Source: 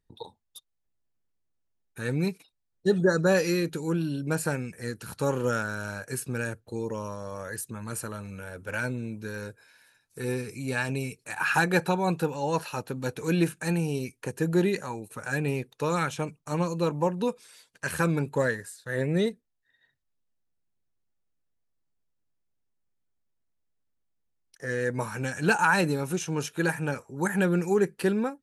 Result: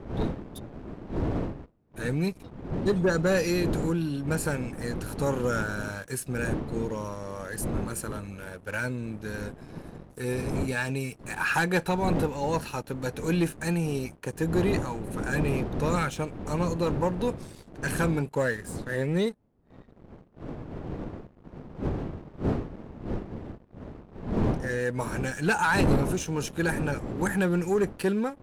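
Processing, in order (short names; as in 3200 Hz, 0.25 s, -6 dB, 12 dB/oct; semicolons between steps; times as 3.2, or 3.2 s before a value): wind noise 300 Hz -33 dBFS; sample leveller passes 2; gain -7.5 dB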